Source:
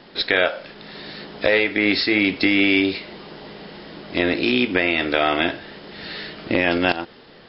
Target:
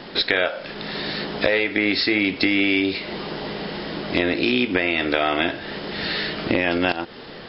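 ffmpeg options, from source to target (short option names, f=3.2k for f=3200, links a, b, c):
-af "acompressor=threshold=-30dB:ratio=2.5,volume=8.5dB"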